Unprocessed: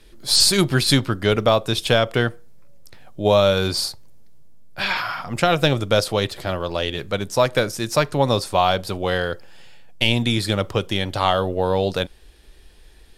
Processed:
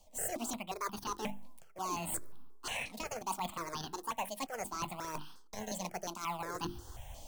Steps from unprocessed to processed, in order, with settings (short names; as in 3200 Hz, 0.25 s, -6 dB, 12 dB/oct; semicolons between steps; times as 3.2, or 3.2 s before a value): bell 970 Hz -7 dB 0.29 oct; wide varispeed 1.81×; in parallel at -4 dB: decimation with a swept rate 21×, swing 160% 1.1 Hz; on the sum: low shelf 240 Hz -6.5 dB; notches 50/100/150/200/250/300/350 Hz; reverse; compressor 12:1, threshold -35 dBFS, peak gain reduction 25 dB; reverse; step phaser 5.6 Hz 390–2100 Hz; gain +2.5 dB